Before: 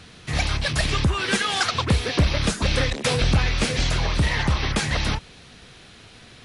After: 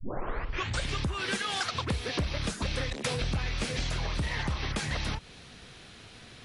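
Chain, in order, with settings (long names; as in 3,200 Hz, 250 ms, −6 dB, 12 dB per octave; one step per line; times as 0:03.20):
turntable start at the beginning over 0.93 s
downward compressor 3 to 1, threshold −27 dBFS, peak gain reduction 9.5 dB
level −3 dB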